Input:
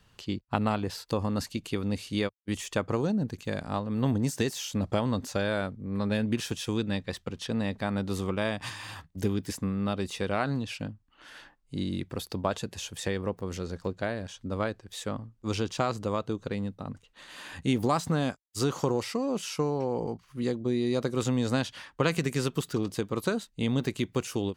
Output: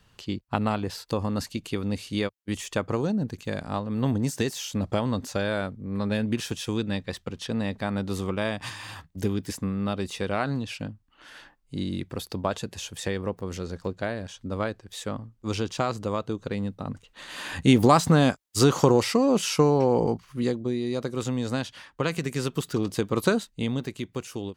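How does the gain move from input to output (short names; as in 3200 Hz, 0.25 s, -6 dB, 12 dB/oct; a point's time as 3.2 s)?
16.39 s +1.5 dB
17.53 s +8.5 dB
20.12 s +8.5 dB
20.8 s -1 dB
22.22 s -1 dB
23.31 s +6.5 dB
23.88 s -3.5 dB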